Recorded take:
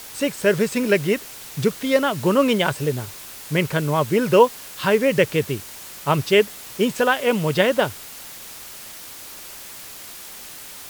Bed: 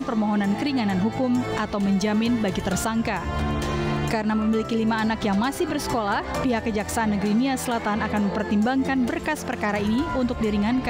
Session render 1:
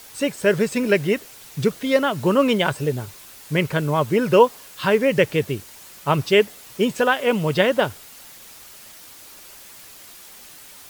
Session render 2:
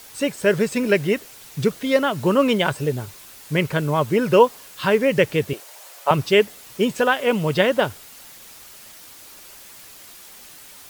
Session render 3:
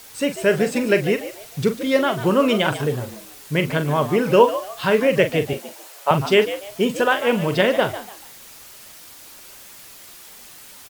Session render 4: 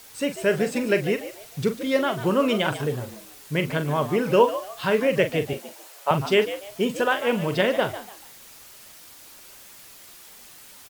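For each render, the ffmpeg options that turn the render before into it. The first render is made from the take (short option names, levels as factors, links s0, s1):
-af "afftdn=nr=6:nf=-39"
-filter_complex "[0:a]asettb=1/sr,asplit=3[s0][s1][s2];[s0]atrim=end=5.534[s3];[s1]atrim=start=5.53:end=6.11,asetpts=PTS-STARTPTS,afade=t=in:d=0.004:c=qsin,afade=t=out:st=0.576:d=0.004:c=qsin,highpass=f=610:t=q:w=2.6[s4];[s2]atrim=start=6.106[s5];[s3][s4]acrossfade=d=0.004:c1=hsin:c2=qsin[s6];[s6][s5]acrossfade=d=0.004:c1=qsin:c2=hsin"
-filter_complex "[0:a]asplit=2[s0][s1];[s1]adelay=42,volume=0.316[s2];[s0][s2]amix=inputs=2:normalize=0,asplit=4[s3][s4][s5][s6];[s4]adelay=146,afreqshift=97,volume=0.224[s7];[s5]adelay=292,afreqshift=194,volume=0.0692[s8];[s6]adelay=438,afreqshift=291,volume=0.0216[s9];[s3][s7][s8][s9]amix=inputs=4:normalize=0"
-af "volume=0.631"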